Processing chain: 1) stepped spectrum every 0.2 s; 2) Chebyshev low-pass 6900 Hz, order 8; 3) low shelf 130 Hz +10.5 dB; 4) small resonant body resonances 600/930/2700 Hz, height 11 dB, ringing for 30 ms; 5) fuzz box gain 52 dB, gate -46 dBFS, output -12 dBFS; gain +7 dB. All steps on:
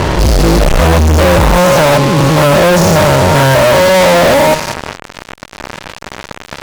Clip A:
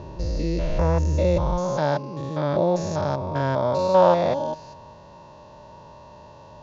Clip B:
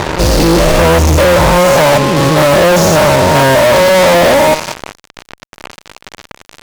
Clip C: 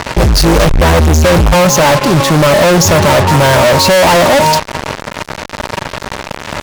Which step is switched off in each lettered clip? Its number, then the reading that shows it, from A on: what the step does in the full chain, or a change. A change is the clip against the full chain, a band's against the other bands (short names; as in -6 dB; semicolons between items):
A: 5, distortion -2 dB; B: 3, 125 Hz band -3.5 dB; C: 1, 8 kHz band +3.5 dB